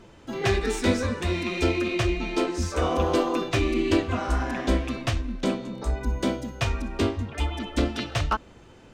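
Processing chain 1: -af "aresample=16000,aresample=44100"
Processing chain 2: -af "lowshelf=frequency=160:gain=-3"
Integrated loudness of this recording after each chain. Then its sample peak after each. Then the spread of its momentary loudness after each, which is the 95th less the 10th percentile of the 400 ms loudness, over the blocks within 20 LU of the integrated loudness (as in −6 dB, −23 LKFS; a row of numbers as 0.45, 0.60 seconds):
−26.5, −27.5 LKFS; −9.0, −9.0 dBFS; 5, 6 LU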